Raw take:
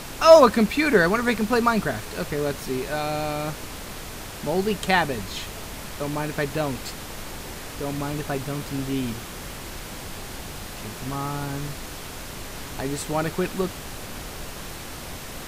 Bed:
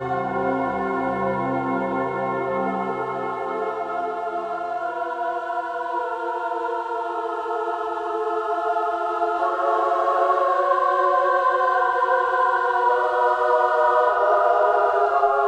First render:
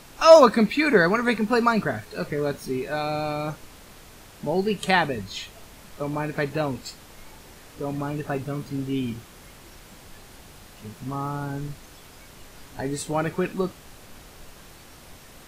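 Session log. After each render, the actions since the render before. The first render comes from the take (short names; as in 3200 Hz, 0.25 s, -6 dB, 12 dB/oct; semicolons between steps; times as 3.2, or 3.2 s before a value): noise print and reduce 11 dB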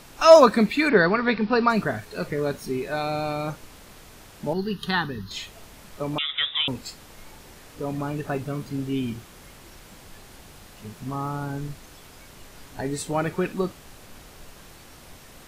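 0.89–1.7 careless resampling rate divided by 4×, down none, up filtered; 4.53–5.31 fixed phaser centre 2300 Hz, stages 6; 6.18–6.68 inverted band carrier 3700 Hz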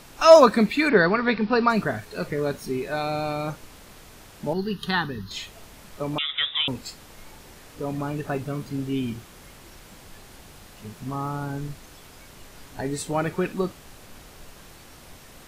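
nothing audible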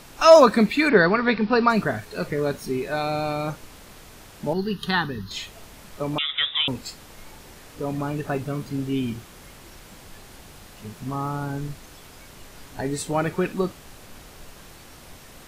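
gain +1.5 dB; limiter -3 dBFS, peak gain reduction 2 dB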